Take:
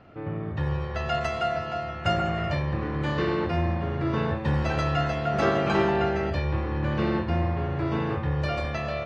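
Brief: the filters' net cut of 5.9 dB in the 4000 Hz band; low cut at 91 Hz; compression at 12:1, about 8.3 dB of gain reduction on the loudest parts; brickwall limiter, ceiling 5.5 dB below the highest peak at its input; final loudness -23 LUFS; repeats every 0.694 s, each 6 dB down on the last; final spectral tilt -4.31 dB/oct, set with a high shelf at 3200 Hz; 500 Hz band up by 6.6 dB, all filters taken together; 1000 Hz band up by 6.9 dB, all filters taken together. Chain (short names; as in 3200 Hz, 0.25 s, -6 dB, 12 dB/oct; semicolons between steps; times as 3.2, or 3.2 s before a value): HPF 91 Hz; bell 500 Hz +6.5 dB; bell 1000 Hz +8.5 dB; high shelf 3200 Hz -8.5 dB; bell 4000 Hz -4 dB; compressor 12:1, threshold -21 dBFS; limiter -18.5 dBFS; feedback echo 0.694 s, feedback 50%, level -6 dB; gain +3.5 dB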